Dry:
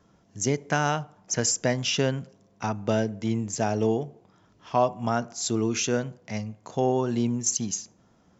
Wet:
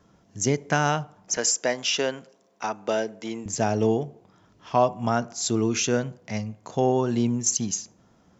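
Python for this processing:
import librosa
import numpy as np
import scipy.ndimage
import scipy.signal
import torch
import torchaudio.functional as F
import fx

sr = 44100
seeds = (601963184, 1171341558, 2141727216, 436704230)

y = fx.highpass(x, sr, hz=380.0, slope=12, at=(1.37, 3.46))
y = F.gain(torch.from_numpy(y), 2.0).numpy()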